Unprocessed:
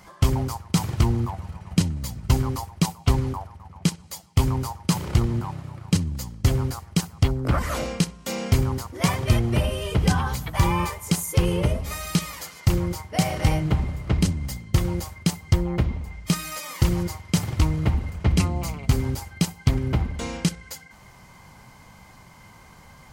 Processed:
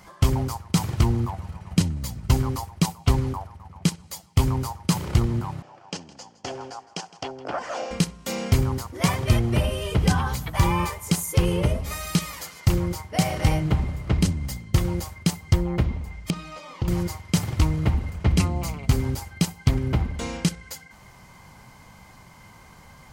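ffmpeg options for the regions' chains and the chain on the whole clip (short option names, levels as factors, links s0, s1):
-filter_complex "[0:a]asettb=1/sr,asplit=3[s0][s1][s2];[s0]atrim=end=5.624[s3];[s1]atrim=start=5.62:end=7.91,asetpts=PTS-STARTPTS,afade=t=in:d=0.004:c=qsin,afade=t=out:st=2.286:d=0.004:c=qsin,highpass=490,equalizer=f=740:t=q:w=4:g=7,equalizer=f=1200:t=q:w=4:g=-6,equalizer=f=2100:t=q:w=4:g=-8,equalizer=f=3900:t=q:w=4:g=-10,lowpass=f=6000:w=0.5412,lowpass=f=6000:w=1.3066,aecho=1:1:162:0.119,atrim=end_sample=100989[s4];[s2]atrim=start=7.906[s5];[s3][s4]acrossfade=d=0.004:c1=hsin:c2=qsin[s6];[s6][s5]acrossfade=d=0.004:c1=qsin:c2=hsin,asettb=1/sr,asplit=3[s7][s8][s9];[s7]atrim=end=16.304[s10];[s8]atrim=start=16.3:end=16.88,asetpts=PTS-STARTPTS,afade=t=in:d=0.004:c=qsin,afade=t=out:st=0.576:d=0.004:c=qsin,lowpass=2800,equalizer=f=1800:w=1.6:g=-9.5,acompressor=threshold=0.0708:ratio=2.5:attack=3.2:release=140:knee=1:detection=peak[s11];[s9]atrim=start=16.876[s12];[s10][s11]acrossfade=d=0.004:c1=hsin:c2=qsin[s13];[s13][s12]acrossfade=d=0.004:c1=qsin:c2=hsin"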